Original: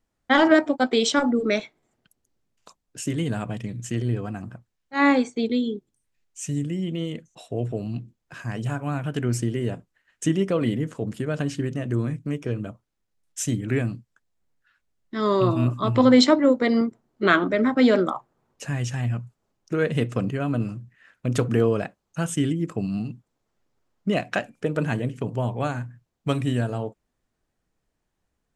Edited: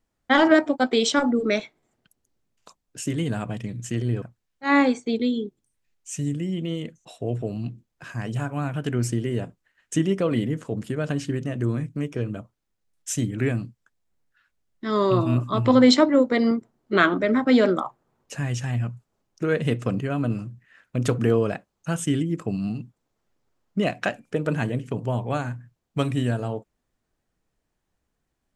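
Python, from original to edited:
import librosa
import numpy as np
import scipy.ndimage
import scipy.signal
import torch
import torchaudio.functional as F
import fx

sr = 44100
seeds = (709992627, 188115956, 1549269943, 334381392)

y = fx.edit(x, sr, fx.cut(start_s=4.22, length_s=0.3), tone=tone)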